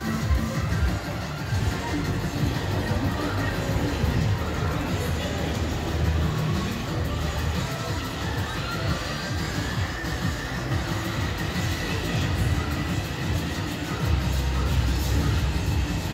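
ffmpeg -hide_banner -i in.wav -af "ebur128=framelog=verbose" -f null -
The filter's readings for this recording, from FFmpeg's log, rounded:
Integrated loudness:
  I:         -26.7 LUFS
  Threshold: -36.6 LUFS
Loudness range:
  LRA:         2.0 LU
  Threshold: -46.8 LUFS
  LRA low:   -28.0 LUFS
  LRA high:  -26.0 LUFS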